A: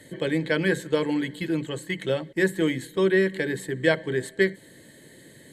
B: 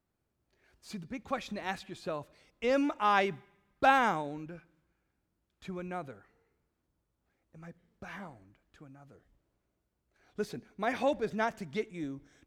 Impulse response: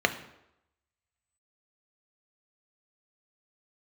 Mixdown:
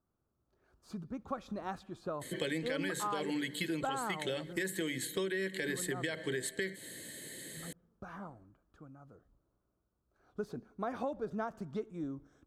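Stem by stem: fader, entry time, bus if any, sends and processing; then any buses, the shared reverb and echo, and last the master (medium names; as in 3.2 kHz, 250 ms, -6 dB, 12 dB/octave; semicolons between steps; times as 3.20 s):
+2.0 dB, 2.20 s, no send, gate with hold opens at -42 dBFS; tilt EQ +2 dB/octave; peak limiter -18.5 dBFS, peak gain reduction 11 dB
-0.5 dB, 0.00 s, no send, resonant high shelf 1.6 kHz -8.5 dB, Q 3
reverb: none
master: peaking EQ 970 Hz -5 dB 1.1 oct; compression 6:1, threshold -33 dBFS, peak gain reduction 12 dB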